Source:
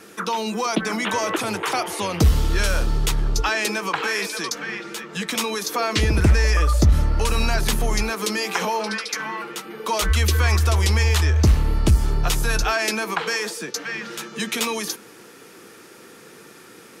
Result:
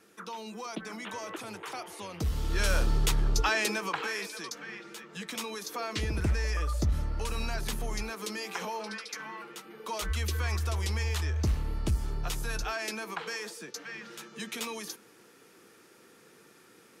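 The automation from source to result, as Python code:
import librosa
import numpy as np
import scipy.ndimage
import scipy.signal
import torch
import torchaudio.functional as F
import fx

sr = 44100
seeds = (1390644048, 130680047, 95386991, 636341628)

y = fx.gain(x, sr, db=fx.line((2.22, -16.0), (2.71, -5.0), (3.56, -5.0), (4.35, -12.5)))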